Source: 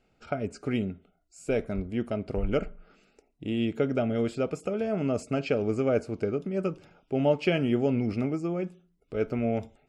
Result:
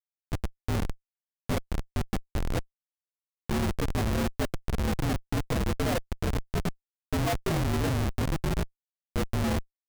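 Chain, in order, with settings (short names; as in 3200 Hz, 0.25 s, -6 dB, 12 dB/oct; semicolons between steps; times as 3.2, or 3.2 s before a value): inharmonic rescaling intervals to 119%; Schmitt trigger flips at -26 dBFS; gain +5 dB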